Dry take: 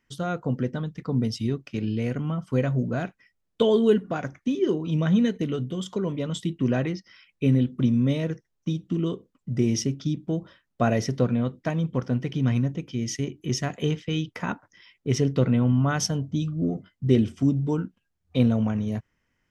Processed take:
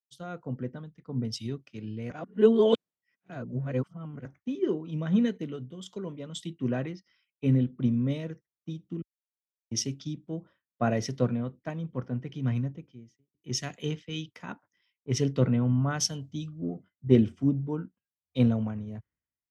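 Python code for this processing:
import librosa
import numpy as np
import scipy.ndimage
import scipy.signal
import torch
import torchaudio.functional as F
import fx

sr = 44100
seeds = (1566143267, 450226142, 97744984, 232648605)

y = fx.studio_fade_out(x, sr, start_s=12.7, length_s=0.64)
y = fx.edit(y, sr, fx.reverse_span(start_s=2.1, length_s=2.15),
    fx.silence(start_s=9.02, length_s=0.69), tone=tone)
y = scipy.signal.sosfilt(scipy.signal.butter(2, 48.0, 'highpass', fs=sr, output='sos'), y)
y = fx.high_shelf(y, sr, hz=6200.0, db=-5.5)
y = fx.band_widen(y, sr, depth_pct=100)
y = y * librosa.db_to_amplitude(-6.5)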